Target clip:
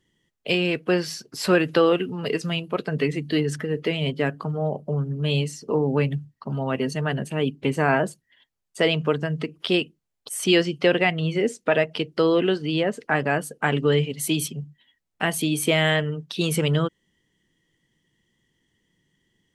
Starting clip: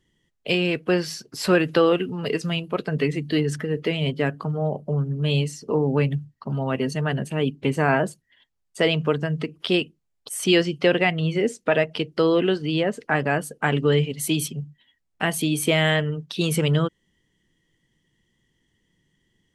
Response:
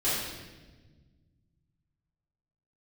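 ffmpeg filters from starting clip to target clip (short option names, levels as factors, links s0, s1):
-af "lowshelf=f=81:g=-7"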